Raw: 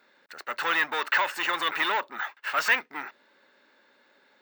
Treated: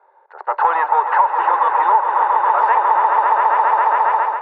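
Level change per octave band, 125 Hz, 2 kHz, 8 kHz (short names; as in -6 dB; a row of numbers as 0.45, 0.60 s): n/a, +2.0 dB, under -25 dB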